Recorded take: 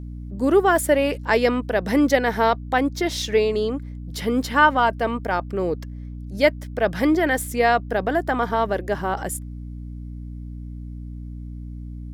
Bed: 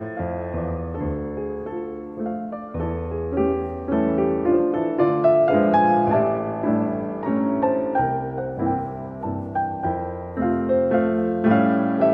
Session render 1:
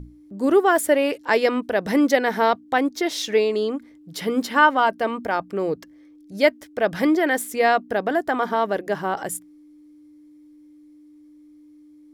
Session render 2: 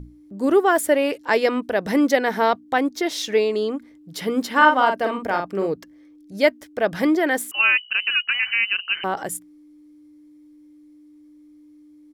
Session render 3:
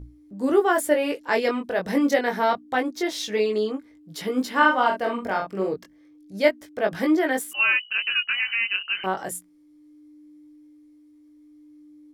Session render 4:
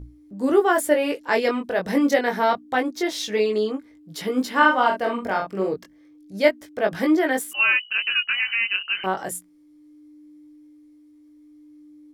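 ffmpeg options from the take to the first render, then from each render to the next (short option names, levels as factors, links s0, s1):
-af "bandreject=f=60:t=h:w=6,bandreject=f=120:t=h:w=6,bandreject=f=180:t=h:w=6,bandreject=f=240:t=h:w=6"
-filter_complex "[0:a]asplit=3[s0][s1][s2];[s0]afade=t=out:st=4.55:d=0.02[s3];[s1]asplit=2[s4][s5];[s5]adelay=46,volume=0.562[s6];[s4][s6]amix=inputs=2:normalize=0,afade=t=in:st=4.55:d=0.02,afade=t=out:st=5.66:d=0.02[s7];[s2]afade=t=in:st=5.66:d=0.02[s8];[s3][s7][s8]amix=inputs=3:normalize=0,asettb=1/sr,asplit=3[s9][s10][s11];[s9]atrim=end=7.514[s12];[s10]atrim=start=7.51:end=9.04,asetpts=PTS-STARTPTS,afade=t=in:d=0.004:c=qsin,afade=t=out:st=1.526:d=0.004:c=qsin,lowpass=f=2700:t=q:w=0.5098,lowpass=f=2700:t=q:w=0.6013,lowpass=f=2700:t=q:w=0.9,lowpass=f=2700:t=q:w=2.563,afreqshift=-3200[s13];[s11]atrim=start=9.036[s14];[s12][s13]acrossfade=d=0.004:c1=hsin:c2=qsin[s15];[s15][s14]acrossfade=d=0.004:c1=qsin:c2=hsin"
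-af "flanger=delay=19:depth=2.4:speed=0.27"
-af "volume=1.19"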